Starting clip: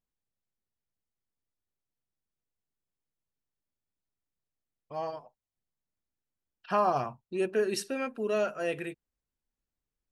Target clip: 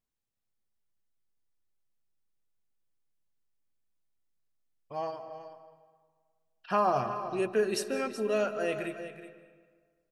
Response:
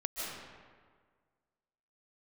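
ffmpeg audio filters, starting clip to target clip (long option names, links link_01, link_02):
-filter_complex "[0:a]aecho=1:1:373:0.237,asplit=2[link_01][link_02];[1:a]atrim=start_sample=2205,adelay=9[link_03];[link_02][link_03]afir=irnorm=-1:irlink=0,volume=-14dB[link_04];[link_01][link_04]amix=inputs=2:normalize=0"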